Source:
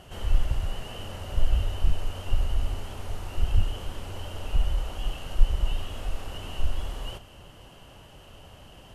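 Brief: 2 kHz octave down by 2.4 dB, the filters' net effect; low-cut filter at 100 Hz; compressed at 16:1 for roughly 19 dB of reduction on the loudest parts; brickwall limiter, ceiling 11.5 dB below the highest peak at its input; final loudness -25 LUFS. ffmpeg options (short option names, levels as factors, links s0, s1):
-af "highpass=100,equalizer=f=2000:t=o:g=-3.5,acompressor=threshold=0.00708:ratio=16,volume=29.9,alimiter=limit=0.15:level=0:latency=1"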